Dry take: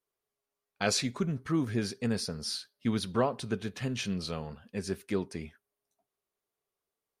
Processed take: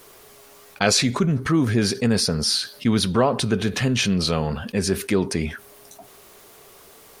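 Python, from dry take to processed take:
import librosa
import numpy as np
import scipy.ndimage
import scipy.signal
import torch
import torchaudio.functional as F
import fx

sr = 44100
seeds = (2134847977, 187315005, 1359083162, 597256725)

y = fx.env_flatten(x, sr, amount_pct=50)
y = y * 10.0 ** (8.0 / 20.0)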